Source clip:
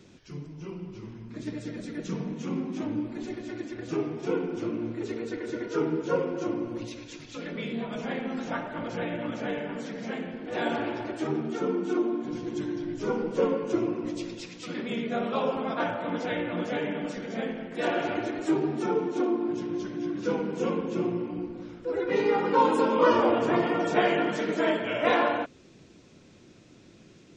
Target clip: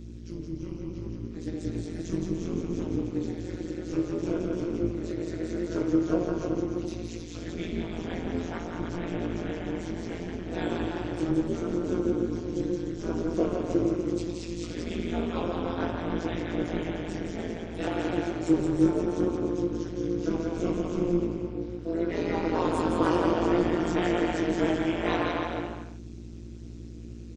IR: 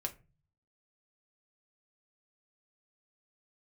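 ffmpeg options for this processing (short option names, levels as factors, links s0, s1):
-af "aecho=1:1:170|297.5|393.1|464.8|518.6:0.631|0.398|0.251|0.158|0.1,flanger=delay=16:depth=3.5:speed=0.67,aeval=exprs='val(0)+0.00631*(sin(2*PI*60*n/s)+sin(2*PI*2*60*n/s)/2+sin(2*PI*3*60*n/s)/3+sin(2*PI*4*60*n/s)/4+sin(2*PI*5*60*n/s)/5)':c=same,bass=f=250:g=8,treble=f=4000:g=8,tremolo=f=170:d=0.974,equalizer=f=330:w=7.9:g=11"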